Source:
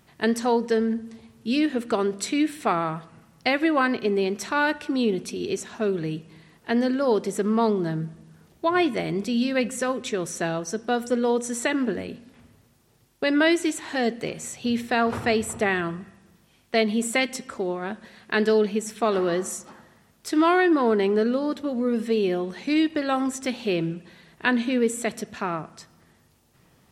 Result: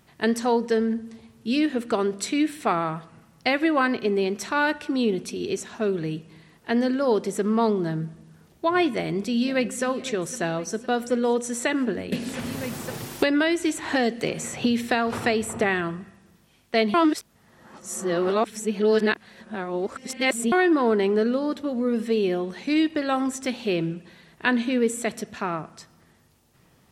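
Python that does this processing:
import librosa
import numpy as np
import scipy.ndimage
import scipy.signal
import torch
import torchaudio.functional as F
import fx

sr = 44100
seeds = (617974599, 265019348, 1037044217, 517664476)

y = fx.echo_throw(x, sr, start_s=8.93, length_s=0.91, ms=510, feedback_pct=60, wet_db=-16.0)
y = fx.band_squash(y, sr, depth_pct=100, at=(12.12, 15.64))
y = fx.edit(y, sr, fx.reverse_span(start_s=16.94, length_s=3.58), tone=tone)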